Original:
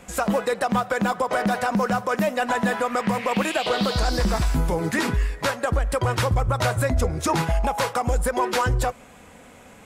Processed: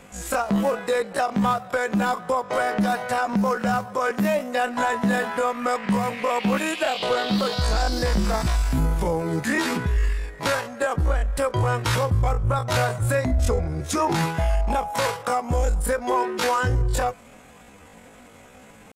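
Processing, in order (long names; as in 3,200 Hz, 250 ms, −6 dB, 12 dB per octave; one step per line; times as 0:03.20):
tempo change 0.52×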